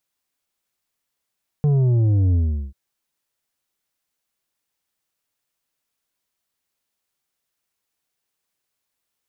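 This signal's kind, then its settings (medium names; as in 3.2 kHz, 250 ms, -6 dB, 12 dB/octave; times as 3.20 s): sub drop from 150 Hz, over 1.09 s, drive 7 dB, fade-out 0.39 s, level -15 dB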